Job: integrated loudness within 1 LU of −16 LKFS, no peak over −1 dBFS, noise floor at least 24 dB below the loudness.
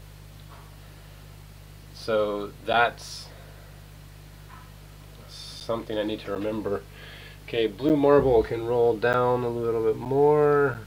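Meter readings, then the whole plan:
number of dropouts 7; longest dropout 8.7 ms; mains hum 50 Hz; hum harmonics up to 150 Hz; level of the hum −44 dBFS; integrated loudness −24.0 LKFS; sample peak −6.0 dBFS; target loudness −16.0 LKFS
→ repair the gap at 0:02.73/0:05.60/0:06.35/0:07.89/0:09.13/0:10.05/0:10.74, 8.7 ms
hum removal 50 Hz, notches 3
level +8 dB
brickwall limiter −1 dBFS

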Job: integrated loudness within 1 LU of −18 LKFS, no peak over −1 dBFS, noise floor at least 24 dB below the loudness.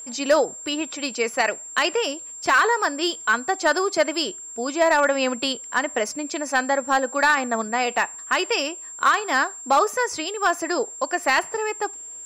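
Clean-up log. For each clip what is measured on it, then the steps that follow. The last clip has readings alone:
share of clipped samples 0.3%; peaks flattened at −10.5 dBFS; interfering tone 7,400 Hz; level of the tone −35 dBFS; integrated loudness −22.5 LKFS; sample peak −10.5 dBFS; target loudness −18.0 LKFS
→ clipped peaks rebuilt −10.5 dBFS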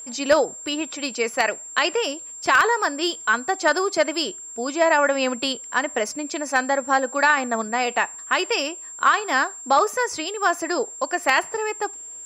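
share of clipped samples 0.0%; interfering tone 7,400 Hz; level of the tone −35 dBFS
→ notch filter 7,400 Hz, Q 30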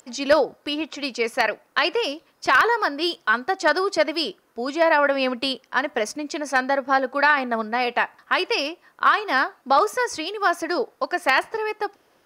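interfering tone none found; integrated loudness −22.5 LKFS; sample peak −2.0 dBFS; target loudness −18.0 LKFS
→ level +4.5 dB
brickwall limiter −1 dBFS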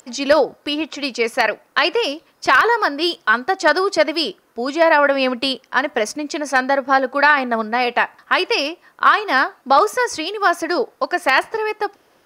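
integrated loudness −18.0 LKFS; sample peak −1.0 dBFS; background noise floor −58 dBFS

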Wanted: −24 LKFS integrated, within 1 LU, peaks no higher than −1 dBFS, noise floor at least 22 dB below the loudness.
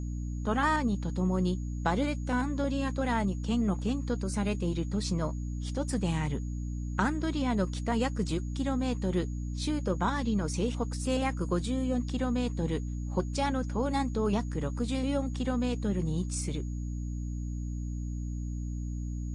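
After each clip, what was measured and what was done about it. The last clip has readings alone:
mains hum 60 Hz; hum harmonics up to 300 Hz; level of the hum −32 dBFS; interfering tone 6,700 Hz; level of the tone −57 dBFS; integrated loudness −31.5 LKFS; sample peak −14.0 dBFS; target loudness −24.0 LKFS
→ mains-hum notches 60/120/180/240/300 Hz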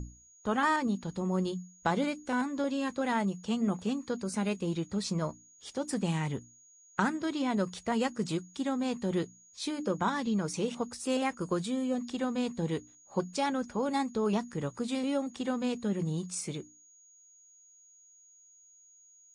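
mains hum none found; interfering tone 6,700 Hz; level of the tone −57 dBFS
→ notch filter 6,700 Hz, Q 30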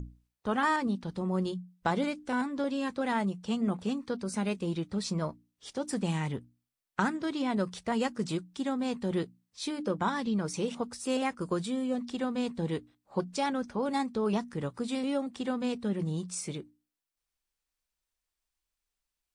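interfering tone none found; integrated loudness −32.5 LKFS; sample peak −14.5 dBFS; target loudness −24.0 LKFS
→ level +8.5 dB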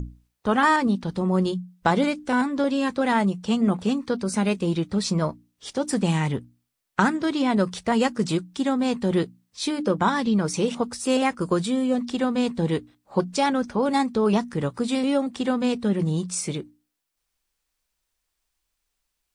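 integrated loudness −24.0 LKFS; sample peak −6.0 dBFS; background noise floor −79 dBFS

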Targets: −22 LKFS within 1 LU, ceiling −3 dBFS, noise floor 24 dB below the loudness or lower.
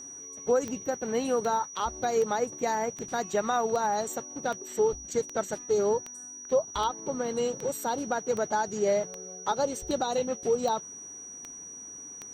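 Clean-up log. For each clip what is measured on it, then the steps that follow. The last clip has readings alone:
number of clicks 16; interfering tone 5,800 Hz; level of the tone −41 dBFS; integrated loudness −29.5 LKFS; sample peak −15.5 dBFS; target loudness −22.0 LKFS
→ click removal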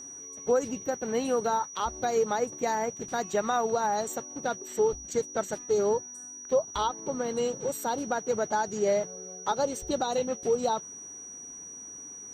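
number of clicks 0; interfering tone 5,800 Hz; level of the tone −41 dBFS
→ notch filter 5,800 Hz, Q 30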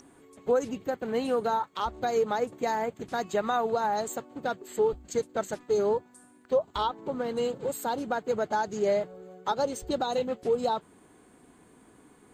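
interfering tone none found; integrated loudness −30.0 LKFS; sample peak −16.0 dBFS; target loudness −22.0 LKFS
→ level +8 dB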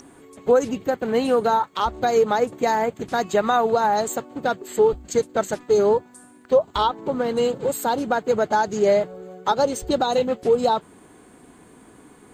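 integrated loudness −22.0 LKFS; sample peak −8.0 dBFS; background noise floor −50 dBFS

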